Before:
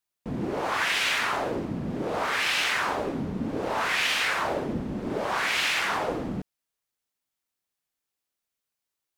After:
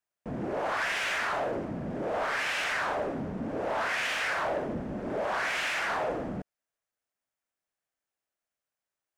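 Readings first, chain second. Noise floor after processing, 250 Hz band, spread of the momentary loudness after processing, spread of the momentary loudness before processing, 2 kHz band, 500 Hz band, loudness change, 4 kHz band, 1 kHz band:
under -85 dBFS, -4.5 dB, 7 LU, 8 LU, -3.5 dB, -1.0 dB, -4.0 dB, -8.5 dB, -3.0 dB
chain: fifteen-band graphic EQ 630 Hz +8 dB, 1.6 kHz +5 dB, 4 kHz -5 dB, 16 kHz -10 dB; saturation -20.5 dBFS, distortion -14 dB; trim -4 dB

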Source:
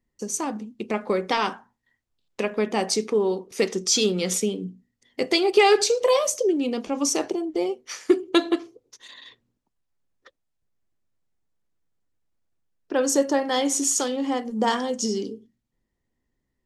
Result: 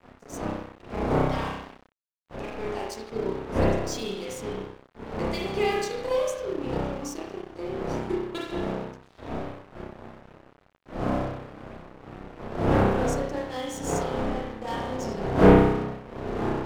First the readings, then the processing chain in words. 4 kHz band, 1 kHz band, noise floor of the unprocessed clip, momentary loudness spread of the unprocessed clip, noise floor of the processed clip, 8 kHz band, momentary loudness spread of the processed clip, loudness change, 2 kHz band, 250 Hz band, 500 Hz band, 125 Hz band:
-11.5 dB, -2.0 dB, -79 dBFS, 10 LU, -60 dBFS, -15.5 dB, 19 LU, -4.0 dB, -4.0 dB, -1.0 dB, -3.0 dB, +11.5 dB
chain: wind noise 520 Hz -21 dBFS; spring tank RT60 1 s, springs 31 ms, chirp 45 ms, DRR -5.5 dB; crossover distortion -26.5 dBFS; trim -14 dB

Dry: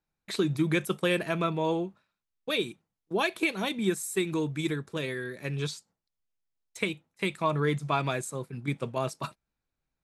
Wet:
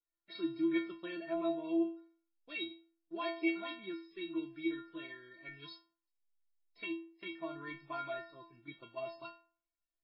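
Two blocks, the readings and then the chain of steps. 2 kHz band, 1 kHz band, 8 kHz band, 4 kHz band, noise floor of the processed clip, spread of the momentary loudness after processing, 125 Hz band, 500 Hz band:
-11.0 dB, -12.0 dB, under -40 dB, -12.0 dB, under -85 dBFS, 17 LU, -27.5 dB, -10.5 dB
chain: inharmonic resonator 330 Hz, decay 0.46 s, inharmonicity 0.008; trim +5.5 dB; MP3 16 kbps 12 kHz

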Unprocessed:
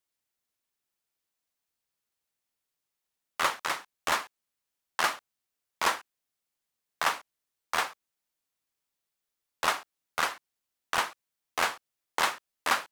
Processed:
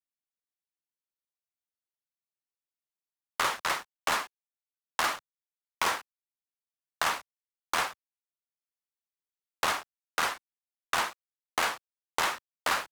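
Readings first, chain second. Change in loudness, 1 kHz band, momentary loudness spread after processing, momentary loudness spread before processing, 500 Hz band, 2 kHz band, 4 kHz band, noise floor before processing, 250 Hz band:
-0.5 dB, -0.5 dB, 7 LU, 10 LU, -0.5 dB, -0.5 dB, 0.0 dB, under -85 dBFS, +0.5 dB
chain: gate -40 dBFS, range -24 dB; waveshaping leveller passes 3; three bands compressed up and down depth 70%; trim -7 dB

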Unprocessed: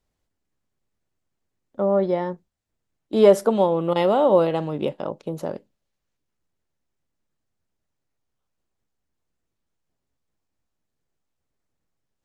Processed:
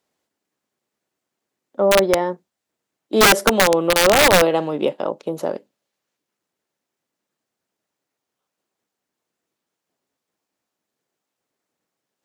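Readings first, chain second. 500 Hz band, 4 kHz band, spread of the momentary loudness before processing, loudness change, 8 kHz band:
+2.0 dB, +17.0 dB, 16 LU, +4.5 dB, no reading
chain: high-pass 260 Hz 12 dB/octave; in parallel at 0 dB: peak limiter -12 dBFS, peak gain reduction 9 dB; on the sum: integer overflow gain 6.5 dB

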